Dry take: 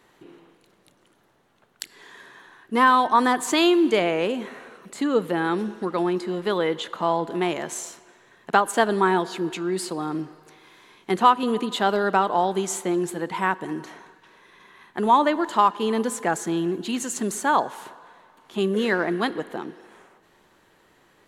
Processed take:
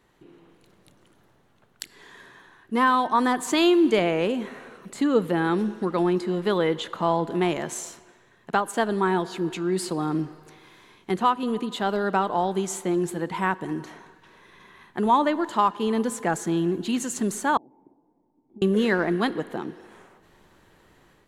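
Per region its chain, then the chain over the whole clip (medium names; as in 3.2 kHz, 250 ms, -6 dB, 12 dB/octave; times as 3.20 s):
17.57–18.62 s: peaking EQ 950 Hz -7 dB 0.64 oct + compression, threshold -34 dBFS + cascade formant filter u
whole clip: bass shelf 160 Hz +11.5 dB; level rider gain up to 7 dB; trim -7 dB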